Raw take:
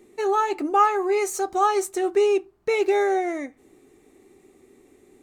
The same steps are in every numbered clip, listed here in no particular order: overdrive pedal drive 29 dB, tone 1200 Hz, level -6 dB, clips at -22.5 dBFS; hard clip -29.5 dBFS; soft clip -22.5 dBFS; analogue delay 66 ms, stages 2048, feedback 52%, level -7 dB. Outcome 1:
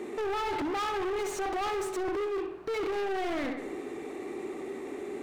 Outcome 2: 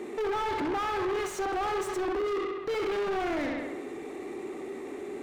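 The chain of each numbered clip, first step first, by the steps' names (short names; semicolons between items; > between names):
overdrive pedal > soft clip > analogue delay > hard clip; hard clip > analogue delay > overdrive pedal > soft clip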